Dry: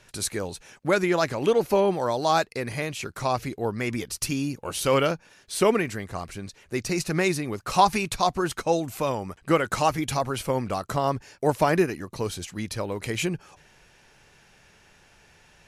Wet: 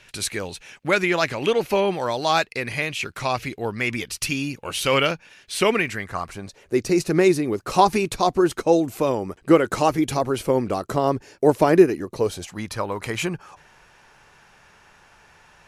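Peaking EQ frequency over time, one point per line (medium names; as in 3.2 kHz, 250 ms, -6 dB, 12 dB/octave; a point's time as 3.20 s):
peaking EQ +9.5 dB 1.3 oct
5.86 s 2.6 kHz
6.77 s 360 Hz
12.03 s 360 Hz
12.70 s 1.1 kHz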